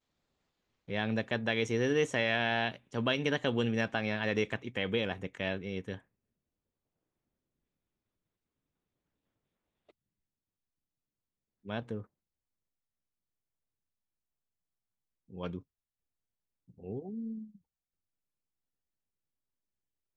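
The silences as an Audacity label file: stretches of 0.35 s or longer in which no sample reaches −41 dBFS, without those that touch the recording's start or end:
5.970000	11.660000	silence
12.020000	15.330000	silence
15.580000	16.840000	silence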